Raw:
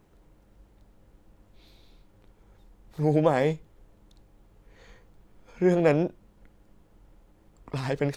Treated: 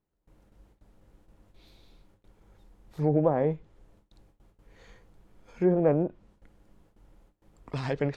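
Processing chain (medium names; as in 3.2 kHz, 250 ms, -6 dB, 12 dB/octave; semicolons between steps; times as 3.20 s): low-pass that closes with the level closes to 960 Hz, closed at -18 dBFS; gate with hold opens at -48 dBFS; trim -1.5 dB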